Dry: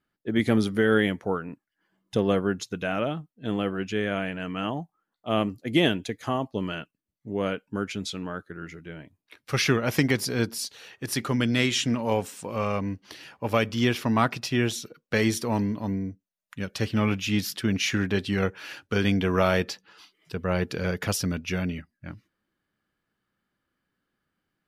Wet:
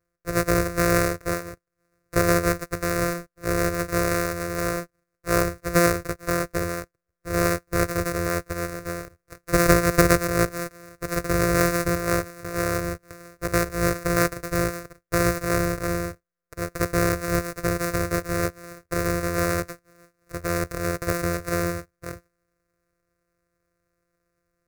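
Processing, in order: sample sorter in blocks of 256 samples; fixed phaser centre 860 Hz, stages 6; vocal rider 2 s; gain +5.5 dB

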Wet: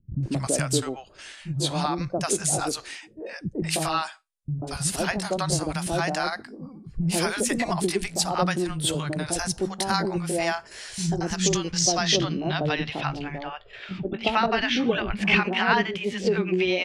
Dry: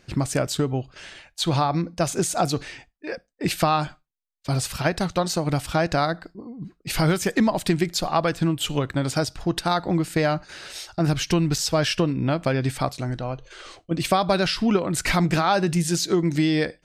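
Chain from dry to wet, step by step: gliding pitch shift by +3 st starting unshifted; low-pass sweep 9900 Hz -> 2700 Hz, 10.51–13.06; three bands offset in time lows, mids, highs 0.14/0.23 s, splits 210/730 Hz

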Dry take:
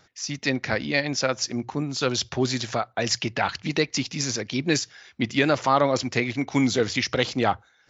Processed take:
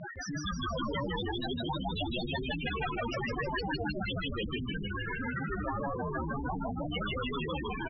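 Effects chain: trilling pitch shifter -7.5 st, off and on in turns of 0.353 s; notches 50/100/150/200/250/300/350 Hz; limiter -15.5 dBFS, peak gain reduction 8 dB; negative-ratio compressor -34 dBFS, ratio -1; BPF 130–3500 Hz; dispersion highs, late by 41 ms, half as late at 1100 Hz; loudest bins only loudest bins 2; air absorption 350 m; frequency-shifting echo 0.157 s, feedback 51%, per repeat -93 Hz, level -3.5 dB; spectral compressor 4:1; gain +6.5 dB

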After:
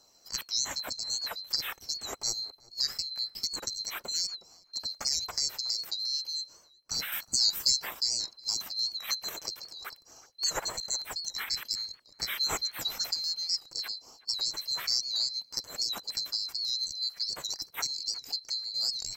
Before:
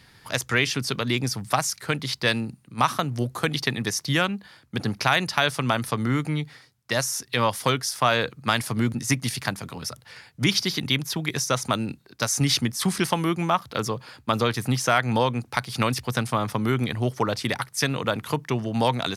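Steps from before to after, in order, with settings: band-swap scrambler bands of 4000 Hz; flange 0.25 Hz, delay 0.2 ms, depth 2.5 ms, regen -58%; 7.12–7.8 tone controls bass +7 dB, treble +8 dB; darkening echo 0.368 s, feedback 17%, low-pass 1200 Hz, level -16 dB; record warp 78 rpm, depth 100 cents; gain -5 dB

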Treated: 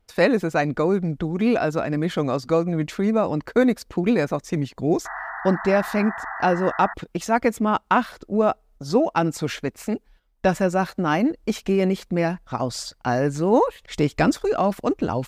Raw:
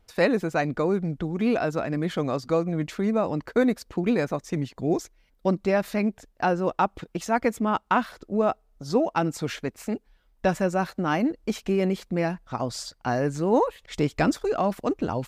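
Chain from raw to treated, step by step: painted sound noise, 5.05–6.94, 650–2000 Hz -36 dBFS; gate -54 dBFS, range -8 dB; gain +3.5 dB

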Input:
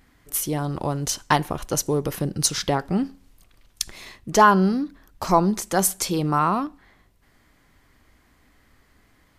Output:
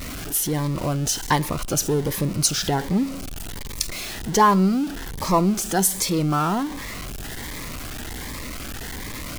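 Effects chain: zero-crossing step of -26 dBFS; cascading phaser rising 1.3 Hz

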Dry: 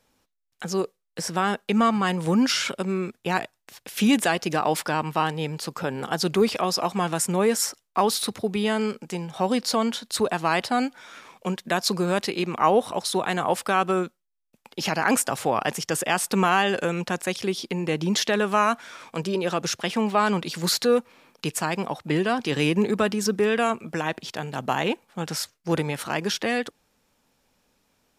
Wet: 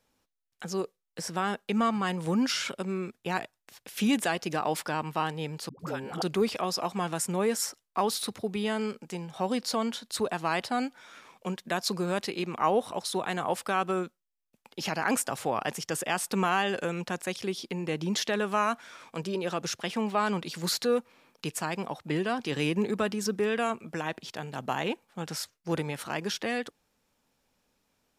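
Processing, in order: 5.69–6.22 dispersion highs, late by 0.104 s, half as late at 420 Hz; gain -6 dB

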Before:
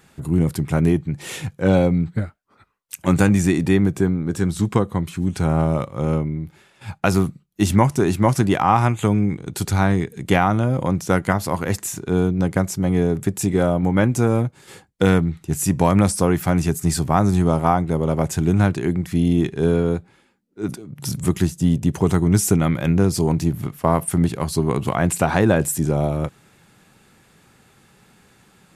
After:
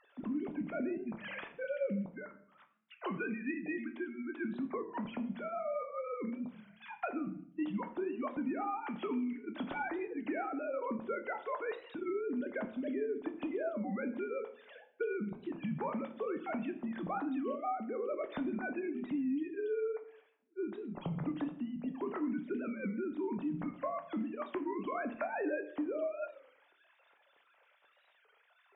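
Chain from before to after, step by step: sine-wave speech; 2.06–4.41 HPF 430 Hz -> 1100 Hz 6 dB/oct; compressor 6:1, threshold -28 dBFS, peak gain reduction 19.5 dB; shoebox room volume 110 m³, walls mixed, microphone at 0.36 m; record warp 33 1/3 rpm, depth 160 cents; gain -8 dB

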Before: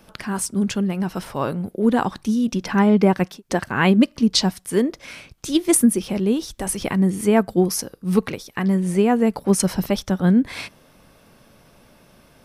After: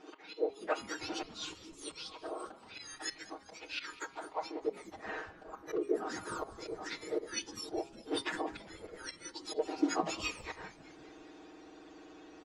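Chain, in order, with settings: spectrum mirrored in octaves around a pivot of 2000 Hz; hard clip -6.5 dBFS, distortion -24 dB; LPF 5500 Hz 24 dB/oct; auto swell 0.529 s; low shelf 390 Hz +3.5 dB; comb 6.4 ms; de-hum 136 Hz, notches 36; on a send: frequency-shifting echo 0.202 s, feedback 65%, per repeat -120 Hz, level -18 dB; on the sum: gain -2 dB

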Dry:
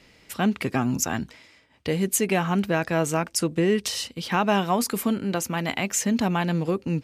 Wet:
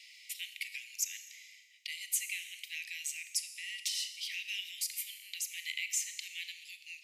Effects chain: steep high-pass 2000 Hz 96 dB/oct; Schroeder reverb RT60 1 s, combs from 27 ms, DRR 10 dB; three-band squash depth 40%; gain -6 dB

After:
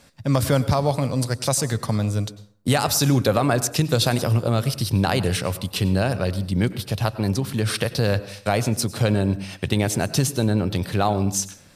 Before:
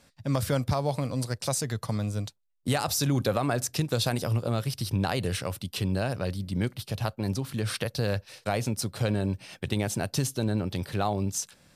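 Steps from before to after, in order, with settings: plate-style reverb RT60 0.55 s, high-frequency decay 0.6×, pre-delay 85 ms, DRR 15 dB; gain +7 dB

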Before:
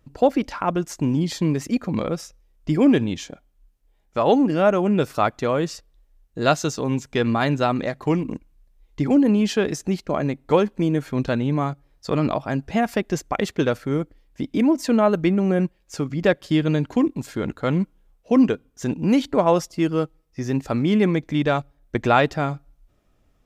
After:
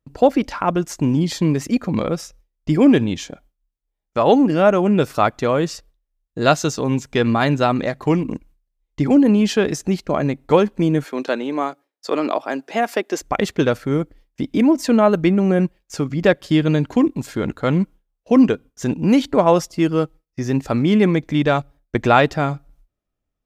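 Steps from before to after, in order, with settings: 11.04–13.21 HPF 290 Hz 24 dB/oct; gate with hold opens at -45 dBFS; gain +3.5 dB

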